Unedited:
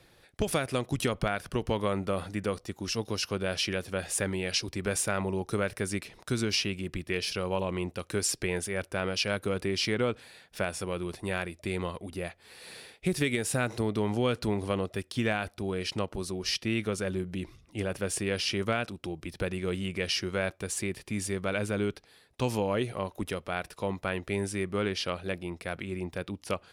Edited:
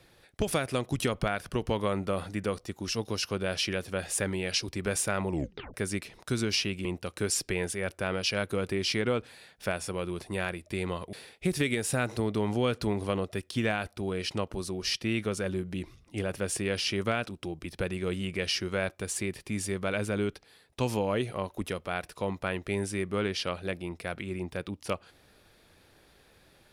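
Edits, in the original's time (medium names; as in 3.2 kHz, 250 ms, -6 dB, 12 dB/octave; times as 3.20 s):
5.30 s: tape stop 0.44 s
6.85–7.78 s: delete
12.06–12.74 s: delete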